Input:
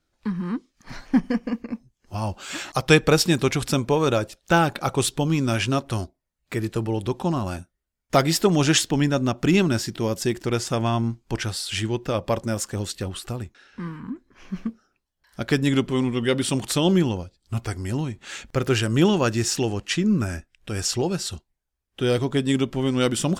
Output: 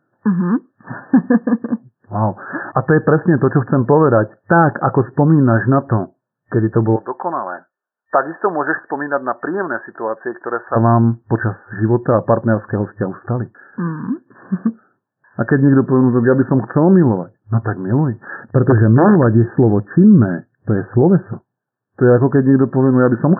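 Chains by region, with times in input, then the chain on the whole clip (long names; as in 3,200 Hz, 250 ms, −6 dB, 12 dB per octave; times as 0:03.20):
0:06.96–0:10.76: high-pass filter 680 Hz + de-essing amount 45%
0:18.53–0:21.33: wrap-around overflow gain 11 dB + tilt shelving filter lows +5.5 dB, about 640 Hz
whole clip: brick-wall band-pass 100–1,800 Hz; boost into a limiter +12.5 dB; level −1 dB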